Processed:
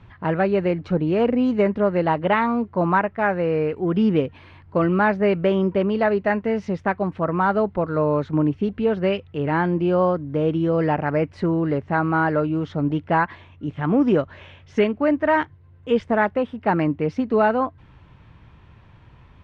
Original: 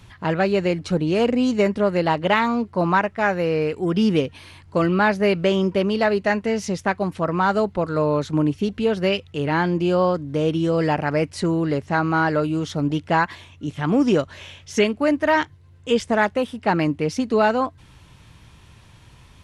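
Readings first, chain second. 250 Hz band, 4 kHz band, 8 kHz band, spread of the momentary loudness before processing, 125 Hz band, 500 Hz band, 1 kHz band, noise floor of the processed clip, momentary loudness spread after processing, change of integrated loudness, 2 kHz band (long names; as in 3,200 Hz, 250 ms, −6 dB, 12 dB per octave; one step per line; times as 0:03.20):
0.0 dB, −8.5 dB, below −20 dB, 5 LU, 0.0 dB, 0.0 dB, 0.0 dB, −50 dBFS, 5 LU, −0.5 dB, −2.0 dB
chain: low-pass filter 2,000 Hz 12 dB per octave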